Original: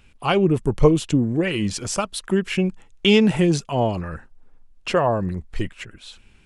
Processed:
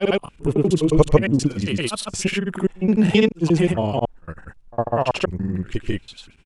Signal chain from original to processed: slices in reverse order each 0.124 s, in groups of 3; grains, grains 20/s, pitch spread up and down by 0 st; pre-echo 58 ms -23 dB; gain +2 dB

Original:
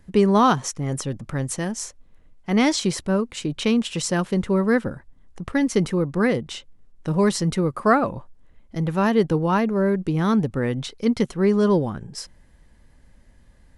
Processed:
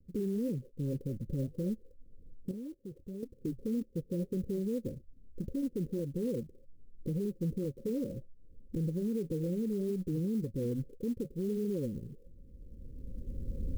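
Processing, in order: recorder AGC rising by 15 dB/s; Chebyshev low-pass 550 Hz, order 10; 2.51–3.23 level quantiser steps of 16 dB; flange 1.8 Hz, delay 0.8 ms, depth 4.2 ms, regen -77%; limiter -22 dBFS, peak gain reduction 10 dB; clock jitter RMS 0.027 ms; gain -5 dB

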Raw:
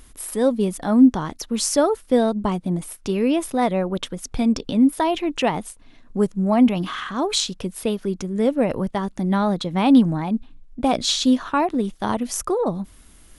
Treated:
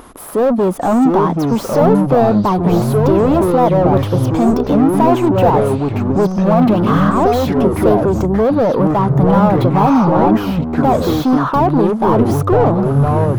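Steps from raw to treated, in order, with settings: overdrive pedal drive 33 dB, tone 2400 Hz, clips at -4 dBFS; echoes that change speed 0.583 s, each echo -5 st, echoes 3; band shelf 4000 Hz -14 dB 2.9 oct; gain -1.5 dB

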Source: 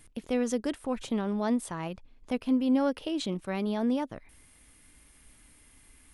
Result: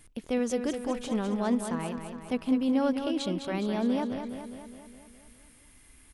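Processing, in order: feedback echo 0.206 s, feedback 59%, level -7.5 dB

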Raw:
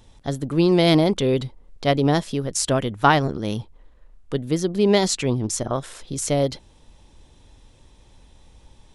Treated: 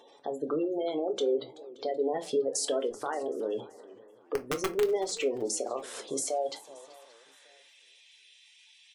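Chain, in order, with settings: high-pass sweep 480 Hz -> 2500 Hz, 6.02–7.84; 2.14–3.04 sample leveller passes 2; compressor 12:1, threshold -26 dBFS, peak gain reduction 19.5 dB; limiter -22.5 dBFS, peak gain reduction 10 dB; spectral gate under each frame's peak -20 dB strong; 4.34–4.87 wrapped overs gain 24 dB; feedback echo 0.576 s, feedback 33%, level -24 dB; reverb RT60 0.25 s, pre-delay 3 ms, DRR 5 dB; warbling echo 0.377 s, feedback 31%, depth 171 cents, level -20 dB

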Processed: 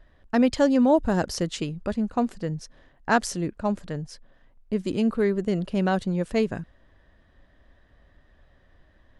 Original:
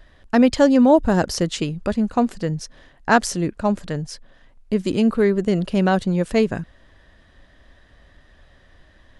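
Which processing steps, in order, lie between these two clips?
mismatched tape noise reduction decoder only; gain -5.5 dB

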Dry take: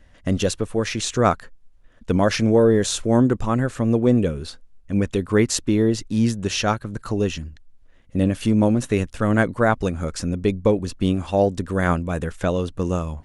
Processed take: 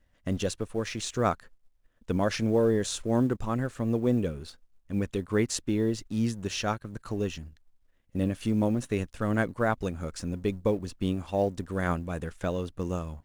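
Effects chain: G.711 law mismatch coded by A; gain -8 dB

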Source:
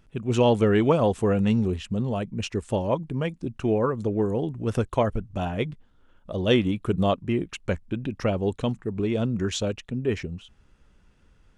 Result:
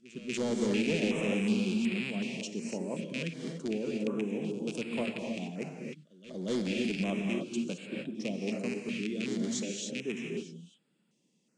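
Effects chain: rattling part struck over -27 dBFS, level -13 dBFS; steep high-pass 160 Hz 48 dB/oct; bell 1100 Hz -13 dB 2.2 oct; overloaded stage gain 19 dB; reverse echo 0.238 s -18 dB; companded quantiser 8-bit; steep low-pass 8600 Hz 36 dB/oct; high shelf 5700 Hz +9 dB; non-linear reverb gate 0.32 s rising, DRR 1 dB; stepped notch 2.7 Hz 830–6000 Hz; gain -6.5 dB

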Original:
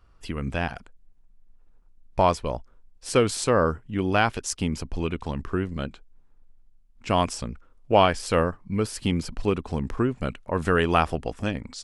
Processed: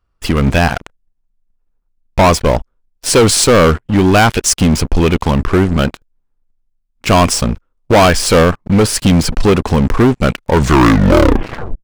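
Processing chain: tape stop at the end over 1.41 s; sample leveller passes 5; gain +1 dB

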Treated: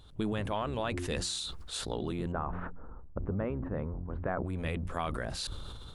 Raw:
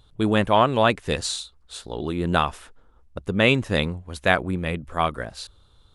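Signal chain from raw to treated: octaver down 1 oct, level -3 dB; de-hum 88.55 Hz, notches 4; compressor 5:1, threshold -33 dBFS, peak gain reduction 18.5 dB; 2.32–4.45 LPF 1400 Hz 24 dB/oct; sustainer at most 20 dB/s

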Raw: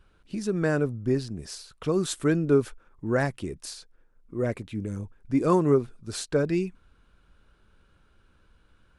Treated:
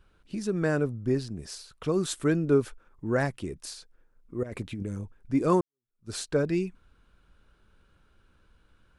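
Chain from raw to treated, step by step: 4.43–4.83 negative-ratio compressor -34 dBFS, ratio -1; 5.61–6.1 fade in exponential; gain -1.5 dB

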